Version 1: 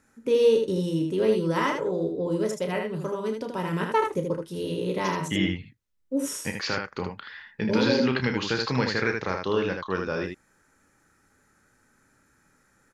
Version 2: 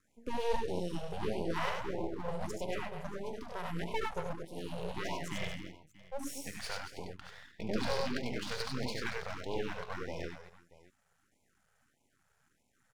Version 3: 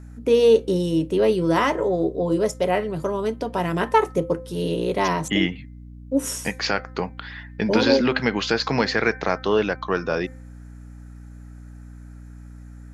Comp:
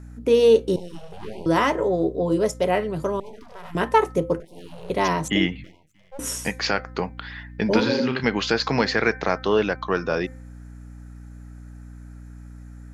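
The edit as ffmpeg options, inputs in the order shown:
-filter_complex "[1:a]asplit=4[a][b][c][d];[2:a]asplit=6[e][f][g][h][i][j];[e]atrim=end=0.762[k];[a]atrim=start=0.758:end=1.462[l];[f]atrim=start=1.458:end=3.202[m];[b]atrim=start=3.198:end=3.752[n];[g]atrim=start=3.748:end=4.402[o];[c]atrim=start=4.398:end=4.902[p];[h]atrim=start=4.898:end=5.642[q];[d]atrim=start=5.638:end=6.192[r];[i]atrim=start=6.188:end=7.802[s];[0:a]atrim=start=7.798:end=8.242[t];[j]atrim=start=8.238[u];[k][l]acrossfade=d=0.004:c1=hsin:c2=hsin[v];[v][m]acrossfade=d=0.004:c1=hsin:c2=hsin[w];[w][n]acrossfade=d=0.004:c1=hsin:c2=hsin[x];[x][o]acrossfade=d=0.004:c1=hsin:c2=hsin[y];[y][p]acrossfade=d=0.004:c1=hsin:c2=hsin[z];[z][q]acrossfade=d=0.004:c1=hsin:c2=hsin[aa];[aa][r]acrossfade=d=0.004:c1=hsin:c2=hsin[ab];[ab][s]acrossfade=d=0.004:c1=hsin:c2=hsin[ac];[ac][t]acrossfade=d=0.004:c1=hsin:c2=hsin[ad];[ad][u]acrossfade=d=0.004:c1=hsin:c2=hsin"

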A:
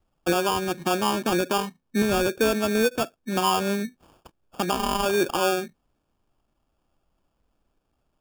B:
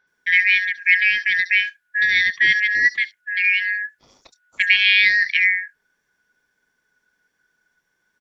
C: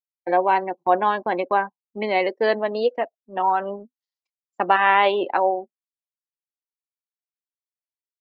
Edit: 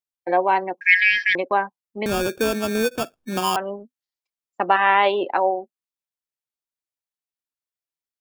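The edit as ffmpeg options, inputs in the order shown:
-filter_complex "[2:a]asplit=3[a][b][c];[a]atrim=end=0.812[d];[1:a]atrim=start=0.808:end=1.352[e];[b]atrim=start=1.348:end=2.062[f];[0:a]atrim=start=2.058:end=3.562[g];[c]atrim=start=3.558[h];[d][e]acrossfade=d=0.004:c1=hsin:c2=hsin[i];[i][f]acrossfade=d=0.004:c1=hsin:c2=hsin[j];[j][g]acrossfade=d=0.004:c1=hsin:c2=hsin[k];[k][h]acrossfade=d=0.004:c1=hsin:c2=hsin"

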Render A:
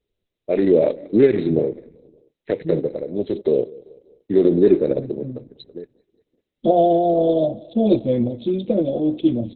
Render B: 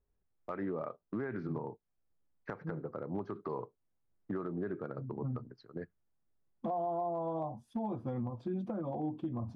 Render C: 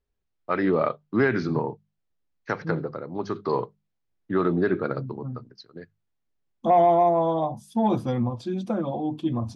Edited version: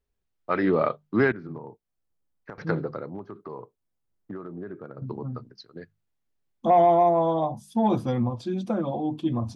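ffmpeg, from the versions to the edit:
-filter_complex "[1:a]asplit=2[a][b];[2:a]asplit=3[c][d][e];[c]atrim=end=1.322[f];[a]atrim=start=1.318:end=2.582[g];[d]atrim=start=2.578:end=3.102[h];[b]atrim=start=3.098:end=5.022[i];[e]atrim=start=5.018[j];[f][g]acrossfade=d=0.004:c1=hsin:c2=hsin[k];[k][h]acrossfade=d=0.004:c1=hsin:c2=hsin[l];[l][i]acrossfade=d=0.004:c1=hsin:c2=hsin[m];[m][j]acrossfade=d=0.004:c1=hsin:c2=hsin"

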